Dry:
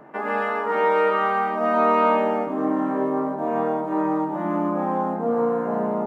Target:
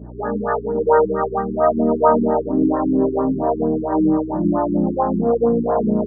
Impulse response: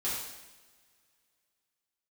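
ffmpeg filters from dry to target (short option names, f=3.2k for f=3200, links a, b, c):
-filter_complex "[0:a]acrossover=split=410[a][b];[a]aeval=exprs='val(0)*(1-1/2+1/2*cos(2*PI*2.7*n/s))':c=same[c];[b]aeval=exprs='val(0)*(1-1/2-1/2*cos(2*PI*2.7*n/s))':c=same[d];[c][d]amix=inputs=2:normalize=0,acrossover=split=810[e][f];[e]acontrast=83[g];[g][f]amix=inputs=2:normalize=0,aeval=exprs='val(0)+0.0126*(sin(2*PI*60*n/s)+sin(2*PI*2*60*n/s)/2+sin(2*PI*3*60*n/s)/3+sin(2*PI*4*60*n/s)/4+sin(2*PI*5*60*n/s)/5)':c=same,highpass=58,asplit=2[h][i];[1:a]atrim=start_sample=2205,lowpass=1.5k[j];[i][j]afir=irnorm=-1:irlink=0,volume=-27dB[k];[h][k]amix=inputs=2:normalize=0,afftfilt=real='re*lt(b*sr/1024,380*pow(2000/380,0.5+0.5*sin(2*PI*4.4*pts/sr)))':imag='im*lt(b*sr/1024,380*pow(2000/380,0.5+0.5*sin(2*PI*4.4*pts/sr)))':win_size=1024:overlap=0.75,volume=5dB"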